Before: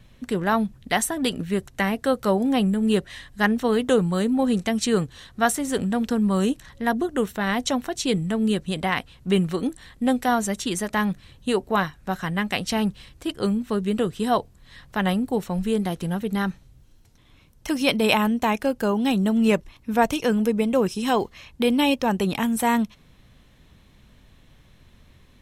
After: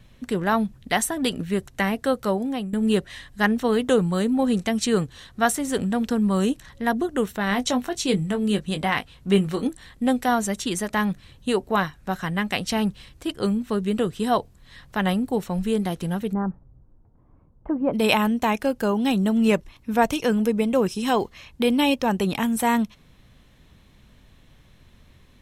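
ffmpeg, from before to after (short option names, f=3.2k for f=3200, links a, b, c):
-filter_complex "[0:a]asettb=1/sr,asplit=3[a][b][c];[a]atrim=end=7.494[d];[b]atrim=start=7.49:end=9.68,asetpts=PTS-STARTPTS,afade=t=in:d=0.004:c=qsin,afade=t=out:st=2.186:d=0.004:c=qsin,asplit=2[e][f];[f]adelay=20,volume=-8.5dB[g];[e][g]amix=inputs=2:normalize=0,atrim=end_sample=96579[h];[c]atrim=start=9.676[i];[d][h]acrossfade=d=0.004:c1=hsin:c2=qsin[j];[j][i]acrossfade=d=0.004:c1=qsin:c2=hsin,asplit=3[k][l][m];[k]afade=t=out:st=16.32:d=0.02[n];[l]lowpass=f=1.1k:w=0.5412,lowpass=f=1.1k:w=1.3066,afade=t=in:st=16.32:d=0.02,afade=t=out:st=17.93:d=0.02[o];[m]afade=t=in:st=17.93:d=0.02[p];[n][o][p]amix=inputs=3:normalize=0,asplit=2[q][r];[q]atrim=end=2.73,asetpts=PTS-STARTPTS,afade=t=out:st=1.86:d=0.87:c=qsin:silence=0.223872[s];[r]atrim=start=2.73,asetpts=PTS-STARTPTS,afade=t=in:d=0.004:c=hsin:silence=0.223872[t];[s][t]concat=n=2:v=0:a=1"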